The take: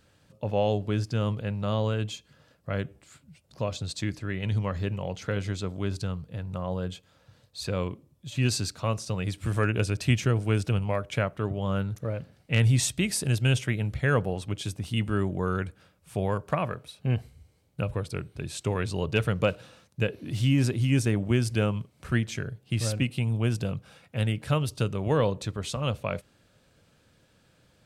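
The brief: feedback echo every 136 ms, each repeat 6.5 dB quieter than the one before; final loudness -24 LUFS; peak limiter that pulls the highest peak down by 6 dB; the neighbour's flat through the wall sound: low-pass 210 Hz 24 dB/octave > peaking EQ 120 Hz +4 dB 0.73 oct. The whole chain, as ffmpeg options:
-af "alimiter=limit=0.141:level=0:latency=1,lowpass=f=210:w=0.5412,lowpass=f=210:w=1.3066,equalizer=f=120:t=o:w=0.73:g=4,aecho=1:1:136|272|408|544|680|816:0.473|0.222|0.105|0.0491|0.0231|0.0109,volume=1.68"

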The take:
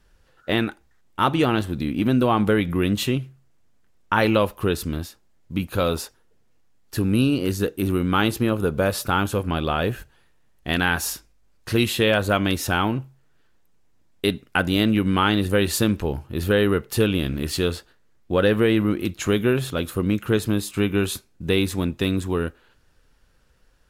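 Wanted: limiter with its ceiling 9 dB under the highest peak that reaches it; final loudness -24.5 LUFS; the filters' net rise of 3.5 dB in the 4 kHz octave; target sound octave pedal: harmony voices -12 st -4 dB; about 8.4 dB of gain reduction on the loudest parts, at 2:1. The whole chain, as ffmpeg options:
-filter_complex "[0:a]equalizer=f=4000:t=o:g=4.5,acompressor=threshold=0.0316:ratio=2,alimiter=limit=0.1:level=0:latency=1,asplit=2[s0][s1];[s1]asetrate=22050,aresample=44100,atempo=2,volume=0.631[s2];[s0][s2]amix=inputs=2:normalize=0,volume=2"

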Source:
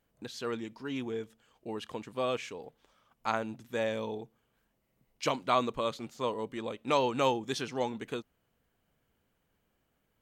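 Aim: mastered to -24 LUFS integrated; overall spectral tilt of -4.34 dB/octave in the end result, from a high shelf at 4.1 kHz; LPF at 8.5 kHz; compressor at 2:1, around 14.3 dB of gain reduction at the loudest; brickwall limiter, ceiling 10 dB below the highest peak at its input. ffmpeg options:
-af "lowpass=8500,highshelf=f=4100:g=-8,acompressor=threshold=0.00316:ratio=2,volume=17.8,alimiter=limit=0.251:level=0:latency=1"

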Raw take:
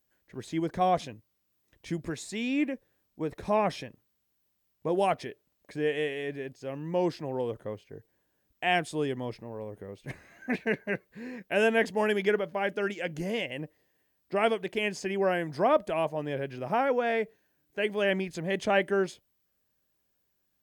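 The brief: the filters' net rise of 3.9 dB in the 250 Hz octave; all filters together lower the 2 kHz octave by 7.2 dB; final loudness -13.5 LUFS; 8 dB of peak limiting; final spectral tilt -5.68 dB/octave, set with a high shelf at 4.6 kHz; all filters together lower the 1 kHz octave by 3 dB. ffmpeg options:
-af "equalizer=f=250:t=o:g=5.5,equalizer=f=1000:t=o:g=-3.5,equalizer=f=2000:t=o:g=-9,highshelf=f=4600:g=3.5,volume=8.41,alimiter=limit=0.794:level=0:latency=1"

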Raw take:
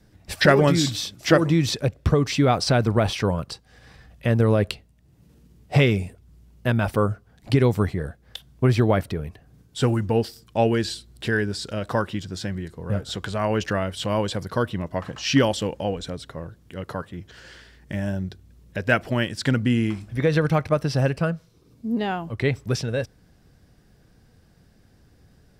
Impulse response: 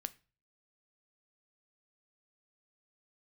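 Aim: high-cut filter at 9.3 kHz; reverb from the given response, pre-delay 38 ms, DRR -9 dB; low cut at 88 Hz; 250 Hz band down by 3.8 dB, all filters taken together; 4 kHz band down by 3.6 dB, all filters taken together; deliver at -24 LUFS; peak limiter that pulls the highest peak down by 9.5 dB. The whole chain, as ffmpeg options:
-filter_complex "[0:a]highpass=88,lowpass=9300,equalizer=f=250:t=o:g=-5,equalizer=f=4000:t=o:g=-4.5,alimiter=limit=0.266:level=0:latency=1,asplit=2[s0][s1];[1:a]atrim=start_sample=2205,adelay=38[s2];[s1][s2]afir=irnorm=-1:irlink=0,volume=3.76[s3];[s0][s3]amix=inputs=2:normalize=0,volume=0.447"

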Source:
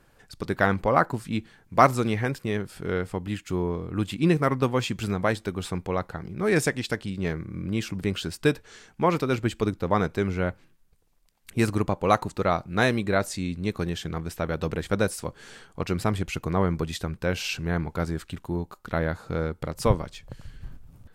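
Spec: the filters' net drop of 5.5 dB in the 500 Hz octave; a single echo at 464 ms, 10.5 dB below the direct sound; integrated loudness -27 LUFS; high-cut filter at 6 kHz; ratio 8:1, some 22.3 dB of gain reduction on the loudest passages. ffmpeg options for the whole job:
-af "lowpass=6000,equalizer=f=500:t=o:g=-7,acompressor=threshold=0.0126:ratio=8,aecho=1:1:464:0.299,volume=6.31"

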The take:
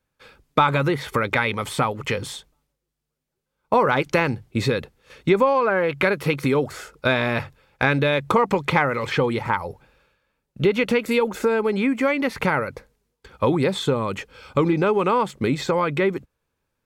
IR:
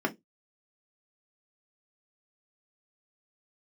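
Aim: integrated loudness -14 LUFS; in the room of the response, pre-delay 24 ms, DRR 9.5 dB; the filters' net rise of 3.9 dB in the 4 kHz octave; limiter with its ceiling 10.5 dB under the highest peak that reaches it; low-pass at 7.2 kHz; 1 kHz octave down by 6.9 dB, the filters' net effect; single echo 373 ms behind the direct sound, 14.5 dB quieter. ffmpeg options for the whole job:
-filter_complex "[0:a]lowpass=7200,equalizer=f=1000:t=o:g=-9,equalizer=f=4000:t=o:g=5.5,alimiter=limit=0.158:level=0:latency=1,aecho=1:1:373:0.188,asplit=2[s0][s1];[1:a]atrim=start_sample=2205,adelay=24[s2];[s1][s2]afir=irnorm=-1:irlink=0,volume=0.119[s3];[s0][s3]amix=inputs=2:normalize=0,volume=3.76"

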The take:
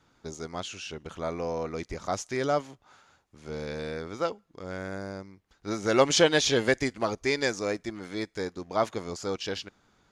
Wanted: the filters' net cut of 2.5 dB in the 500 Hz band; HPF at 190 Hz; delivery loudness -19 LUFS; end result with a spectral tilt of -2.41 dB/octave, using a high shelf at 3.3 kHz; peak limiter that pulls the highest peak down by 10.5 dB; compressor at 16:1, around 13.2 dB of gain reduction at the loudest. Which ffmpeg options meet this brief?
-af "highpass=190,equalizer=f=500:t=o:g=-3,highshelf=f=3300:g=7,acompressor=threshold=0.0355:ratio=16,volume=10.6,alimiter=limit=0.501:level=0:latency=1"

